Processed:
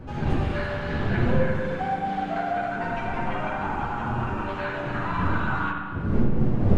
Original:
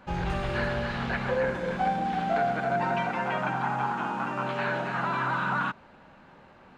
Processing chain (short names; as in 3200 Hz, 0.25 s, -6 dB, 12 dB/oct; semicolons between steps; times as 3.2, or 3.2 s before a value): wind noise 210 Hz -27 dBFS; chorus voices 4, 0.65 Hz, delay 11 ms, depth 3.2 ms; on a send: reverb RT60 1.7 s, pre-delay 41 ms, DRR 1 dB